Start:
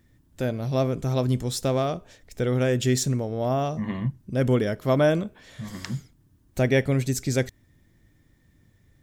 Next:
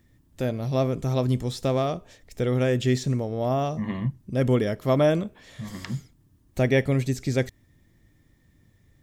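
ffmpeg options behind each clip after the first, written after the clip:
ffmpeg -i in.wav -filter_complex "[0:a]acrossover=split=4400[link_01][link_02];[link_02]acompressor=threshold=-42dB:ratio=4:attack=1:release=60[link_03];[link_01][link_03]amix=inputs=2:normalize=0,bandreject=frequency=1500:width=15" out.wav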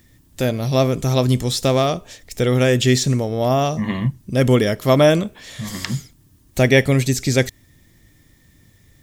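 ffmpeg -i in.wav -af "highshelf=frequency=2400:gain=9.5,volume=6.5dB" out.wav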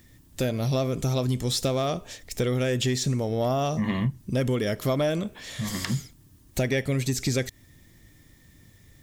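ffmpeg -i in.wav -af "acompressor=threshold=-19dB:ratio=6,asoftclip=type=tanh:threshold=-12.5dB,volume=-1.5dB" out.wav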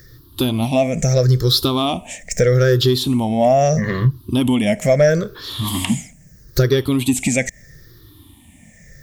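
ffmpeg -i in.wav -af "afftfilt=real='re*pow(10,19/40*sin(2*PI*(0.57*log(max(b,1)*sr/1024/100)/log(2)-(-0.77)*(pts-256)/sr)))':imag='im*pow(10,19/40*sin(2*PI*(0.57*log(max(b,1)*sr/1024/100)/log(2)-(-0.77)*(pts-256)/sr)))':win_size=1024:overlap=0.75,volume=5.5dB" out.wav

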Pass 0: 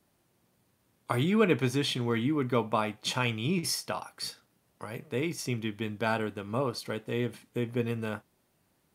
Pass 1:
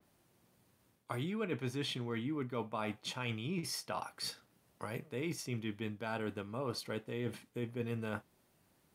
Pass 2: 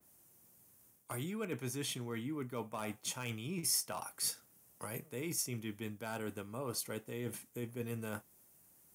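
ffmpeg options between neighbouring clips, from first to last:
ffmpeg -i in.wav -af "areverse,acompressor=threshold=-35dB:ratio=6,areverse,adynamicequalizer=threshold=0.00178:dfrequency=4100:dqfactor=0.7:tfrequency=4100:tqfactor=0.7:attack=5:release=100:ratio=0.375:range=2:mode=cutabove:tftype=highshelf" out.wav
ffmpeg -i in.wav -filter_complex "[0:a]acrossover=split=450|4200[link_01][link_02][link_03];[link_02]volume=32dB,asoftclip=hard,volume=-32dB[link_04];[link_01][link_04][link_03]amix=inputs=3:normalize=0,aexciter=amount=6:drive=3:freq=5800,volume=-2.5dB" out.wav

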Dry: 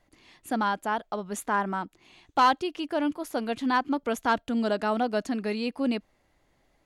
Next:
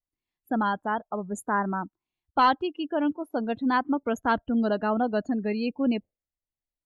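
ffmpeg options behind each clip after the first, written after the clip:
ffmpeg -i in.wav -af "afftdn=noise_reduction=36:noise_floor=-35,lowshelf=frequency=120:gain=12" out.wav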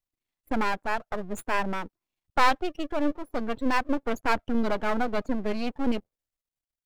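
ffmpeg -i in.wav -af "aeval=exprs='max(val(0),0)':channel_layout=same,volume=4dB" out.wav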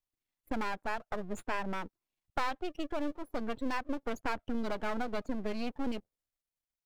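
ffmpeg -i in.wav -filter_complex "[0:a]acrossover=split=3100|7300[link_01][link_02][link_03];[link_01]acompressor=threshold=-26dB:ratio=4[link_04];[link_02]acompressor=threshold=-46dB:ratio=4[link_05];[link_03]acompressor=threshold=-58dB:ratio=4[link_06];[link_04][link_05][link_06]amix=inputs=3:normalize=0,volume=-3.5dB" out.wav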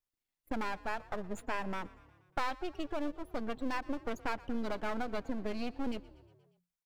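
ffmpeg -i in.wav -filter_complex "[0:a]asplit=6[link_01][link_02][link_03][link_04][link_05][link_06];[link_02]adelay=119,afreqshift=35,volume=-21dB[link_07];[link_03]adelay=238,afreqshift=70,volume=-25.3dB[link_08];[link_04]adelay=357,afreqshift=105,volume=-29.6dB[link_09];[link_05]adelay=476,afreqshift=140,volume=-33.9dB[link_10];[link_06]adelay=595,afreqshift=175,volume=-38.2dB[link_11];[link_01][link_07][link_08][link_09][link_10][link_11]amix=inputs=6:normalize=0,volume=-1.5dB" out.wav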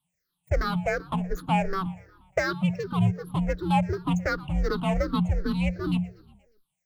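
ffmpeg -i in.wav -af "afftfilt=real='re*pow(10,23/40*sin(2*PI*(0.63*log(max(b,1)*sr/1024/100)/log(2)-(-2.7)*(pts-256)/sr)))':imag='im*pow(10,23/40*sin(2*PI*(0.63*log(max(b,1)*sr/1024/100)/log(2)-(-2.7)*(pts-256)/sr)))':win_size=1024:overlap=0.75,afreqshift=-180,volume=4.5dB" out.wav

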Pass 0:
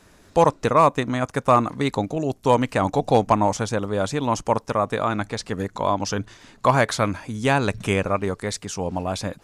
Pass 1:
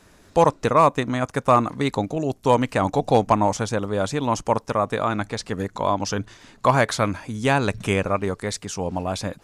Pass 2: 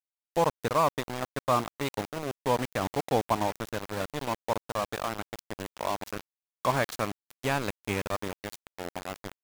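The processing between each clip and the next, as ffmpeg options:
ffmpeg -i in.wav -af anull out.wav
ffmpeg -i in.wav -filter_complex "[0:a]asplit=2[link_01][link_02];[link_02]adelay=530,lowpass=frequency=1500:poles=1,volume=-21dB,asplit=2[link_03][link_04];[link_04]adelay=530,lowpass=frequency=1500:poles=1,volume=0.45,asplit=2[link_05][link_06];[link_06]adelay=530,lowpass=frequency=1500:poles=1,volume=0.45[link_07];[link_01][link_03][link_05][link_07]amix=inputs=4:normalize=0,aeval=exprs='val(0)*gte(abs(val(0)),0.0944)':channel_layout=same,volume=-8.5dB" out.wav

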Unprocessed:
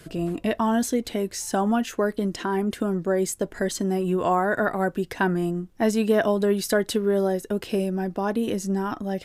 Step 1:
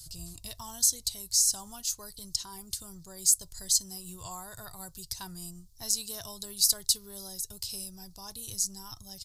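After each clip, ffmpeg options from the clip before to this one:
ffmpeg -i in.wav -af "firequalizer=gain_entry='entry(100,0);entry(220,-30);entry(550,-29);entry(970,-17);entry(1600,-26);entry(2800,-15);entry(4400,9)':delay=0.05:min_phase=1" out.wav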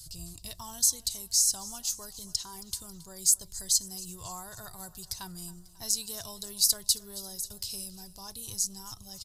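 ffmpeg -i in.wav -af "aecho=1:1:272|544|816|1088|1360:0.112|0.0662|0.0391|0.023|0.0136" out.wav

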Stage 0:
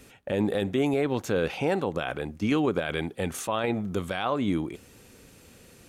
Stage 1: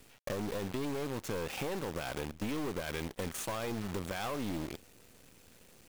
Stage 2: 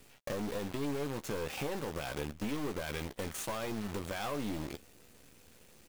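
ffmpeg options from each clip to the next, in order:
ffmpeg -i in.wav -af "aeval=exprs='(tanh(22.4*val(0)+0.65)-tanh(0.65))/22.4':channel_layout=same,acrusher=bits=7:dc=4:mix=0:aa=0.000001,acompressor=threshold=-32dB:ratio=6" out.wav
ffmpeg -i in.wav -filter_complex "[0:a]asplit=2[link_01][link_02];[link_02]adelay=14,volume=-9dB[link_03];[link_01][link_03]amix=inputs=2:normalize=0,volume=-1dB" out.wav

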